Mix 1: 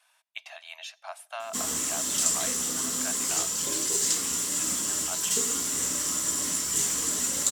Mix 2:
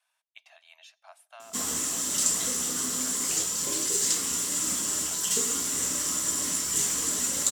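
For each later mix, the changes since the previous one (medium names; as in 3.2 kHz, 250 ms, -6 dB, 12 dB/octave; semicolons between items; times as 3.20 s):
speech -11.5 dB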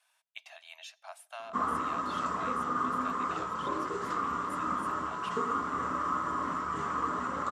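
speech +5.0 dB; background: add resonant low-pass 1.2 kHz, resonance Q 7.8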